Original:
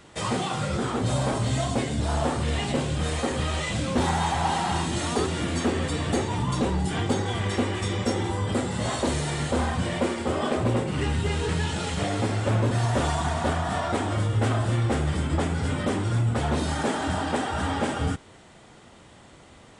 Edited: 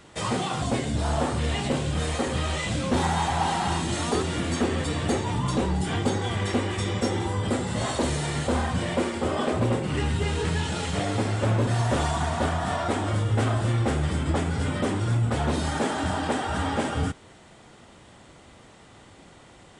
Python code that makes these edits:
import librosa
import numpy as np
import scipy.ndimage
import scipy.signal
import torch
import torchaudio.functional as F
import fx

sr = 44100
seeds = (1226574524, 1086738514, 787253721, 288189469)

y = fx.edit(x, sr, fx.cut(start_s=0.62, length_s=1.04), tone=tone)